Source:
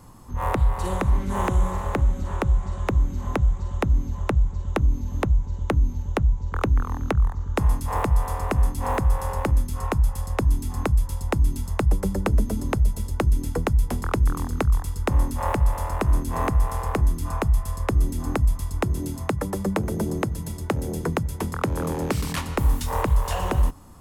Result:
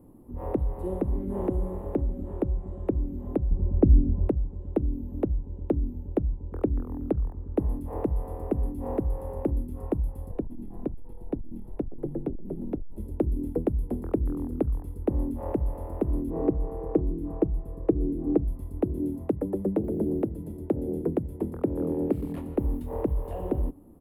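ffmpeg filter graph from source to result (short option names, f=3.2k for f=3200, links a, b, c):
-filter_complex "[0:a]asettb=1/sr,asplit=3[a][b][c];[a]atrim=end=3.514[d];[b]atrim=start=3.51:end=4.29,asetpts=PTS-STARTPTS,afade=t=in:d=0.004:c=qsin,afade=t=out:st=0.776:d=0.004:c=qsin,lowpass=1.6k,lowshelf=f=340:g=11.5[e];[c]atrim=start=4.286[f];[d][e]acrossfade=d=0.004:c1=hsin:c2=qsin[g];[g][f]acrossfade=d=0.004:c1=qsin:c2=hsin,asettb=1/sr,asplit=3[h][i][j];[h]atrim=end=10.314[k];[i]atrim=start=10.31:end=12.98,asetpts=PTS-STARTPTS,afade=t=in:d=0.004:c=qsin,afade=t=out:st=2.666:d=0.004:c=qsin,acrossover=split=4000[l][m];[m]acompressor=threshold=-56dB:ratio=4:attack=1:release=60[n];[l][n]amix=inputs=2:normalize=0,afreqshift=-47,aeval=exprs='(tanh(11.2*val(0)+0.2)-tanh(0.2))/11.2':c=same[o];[j]atrim=start=12.976[p];[k][o]acrossfade=d=0.004:c1=hsin:c2=qsin[q];[q][p]acrossfade=d=0.004:c1=qsin:c2=hsin,asettb=1/sr,asplit=3[r][s][t];[r]atrim=end=16.304[u];[s]atrim=start=16.3:end=18.48,asetpts=PTS-STARTPTS,afade=t=in:d=0.004:c=qsin,afade=t=out:st=2.176:d=0.004:c=qsin,lowpass=f=1.8k:p=1,equalizer=f=400:w=3:g=6.5,aecho=1:1:6.3:0.46,atrim=end_sample=96138[v];[t]atrim=start=18.476[w];[u][v]acrossfade=d=0.004:c1=hsin:c2=qsin[x];[x][w]acrossfade=d=0.004:c1=qsin:c2=hsin,asettb=1/sr,asplit=3[y][z][aa];[y]atrim=end=19.844[ab];[z]atrim=start=19.84:end=20.26,asetpts=PTS-STARTPTS,afade=t=in:d=0.004:c=qsin,afade=t=out:st=0.416:d=0.004:c=qsin,asubboost=boost=6:cutoff=140,acrusher=bits=7:mode=log:mix=0:aa=0.000001[ac];[aa]atrim=start=20.256[ad];[ab][ac]acrossfade=d=0.004:c1=hsin:c2=qsin[ae];[ae][ad]acrossfade=d=0.004:c1=qsin:c2=hsin,firequalizer=gain_entry='entry(130,0);entry(300,13);entry(1100,-12);entry(2600,-15);entry(5800,-29);entry(11000,-2)':delay=0.05:min_phase=1,acrossover=split=7300[af][ag];[ag]acompressor=threshold=-53dB:ratio=4:attack=1:release=60[ah];[af][ah]amix=inputs=2:normalize=0,bandreject=f=1.5k:w=29,volume=-8.5dB"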